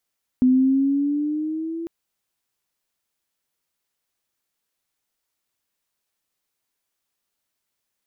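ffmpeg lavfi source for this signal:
-f lavfi -i "aevalsrc='pow(10,(-12-15*t/1.45)/20)*sin(2*PI*252*1.45/(5*log(2)/12)*(exp(5*log(2)/12*t/1.45)-1))':d=1.45:s=44100"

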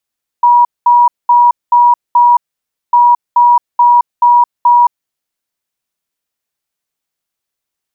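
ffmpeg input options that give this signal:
-f lavfi -i "aevalsrc='0.668*sin(2*PI*963*t)*clip(min(mod(mod(t,2.5),0.43),0.22-mod(mod(t,2.5),0.43))/0.005,0,1)*lt(mod(t,2.5),2.15)':d=5:s=44100"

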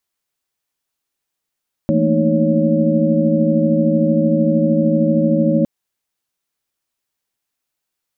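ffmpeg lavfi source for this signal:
-f lavfi -i "aevalsrc='0.119*(sin(2*PI*164.81*t)+sin(2*PI*220*t)+sin(2*PI*233.08*t)+sin(2*PI*311.13*t)+sin(2*PI*554.37*t))':d=3.76:s=44100"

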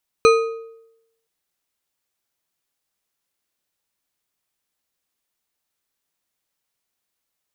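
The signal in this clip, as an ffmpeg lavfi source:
-f lavfi -i "aevalsrc='0.398*pow(10,-3*t/0.85)*sin(2*PI*454*t)+0.224*pow(10,-3*t/0.627)*sin(2*PI*1251.7*t)+0.126*pow(10,-3*t/0.512)*sin(2*PI*2453.4*t)+0.0708*pow(10,-3*t/0.441)*sin(2*PI*4055.6*t)+0.0398*pow(10,-3*t/0.391)*sin(2*PI*6056.4*t)+0.0224*pow(10,-3*t/0.353)*sin(2*PI*8462.6*t)':d=1.02:s=44100"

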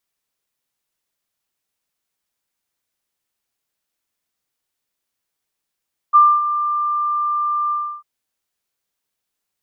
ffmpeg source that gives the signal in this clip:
-f lavfi -i "aevalsrc='0.531*sin(2*PI*1190*t)':d=1.897:s=44100,afade=t=in:d=0.026,afade=t=out:st=0.026:d=0.254:silence=0.266,afade=t=out:st=1.58:d=0.317"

